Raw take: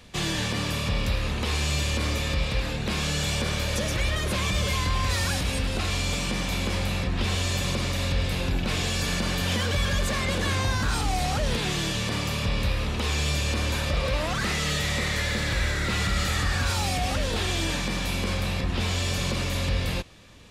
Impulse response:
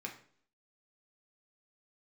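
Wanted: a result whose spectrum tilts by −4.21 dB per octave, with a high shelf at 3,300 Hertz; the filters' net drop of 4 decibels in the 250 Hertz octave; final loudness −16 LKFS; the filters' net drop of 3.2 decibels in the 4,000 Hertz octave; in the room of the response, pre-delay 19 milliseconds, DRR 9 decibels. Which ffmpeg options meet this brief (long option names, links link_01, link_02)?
-filter_complex "[0:a]equalizer=frequency=250:width_type=o:gain=-6,highshelf=frequency=3300:gain=6,equalizer=frequency=4000:width_type=o:gain=-8.5,asplit=2[link_01][link_02];[1:a]atrim=start_sample=2205,adelay=19[link_03];[link_02][link_03]afir=irnorm=-1:irlink=0,volume=-8.5dB[link_04];[link_01][link_04]amix=inputs=2:normalize=0,volume=11dB"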